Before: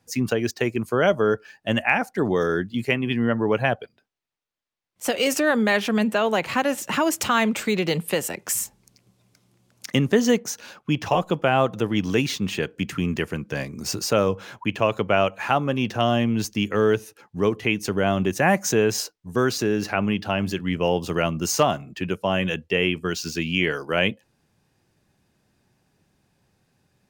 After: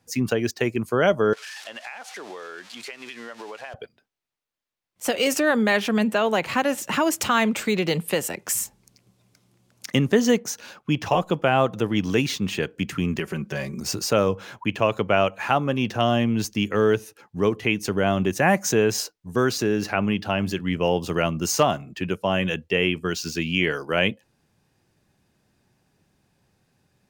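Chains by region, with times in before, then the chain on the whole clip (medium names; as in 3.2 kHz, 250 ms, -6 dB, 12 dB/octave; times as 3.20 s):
1.33–3.74 s: zero-crossing glitches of -20.5 dBFS + band-pass 630–4500 Hz + compression 8:1, threshold -33 dBFS
13.19–13.80 s: comb 5.3 ms, depth 97% + compression 3:1, threshold -24 dBFS
whole clip: none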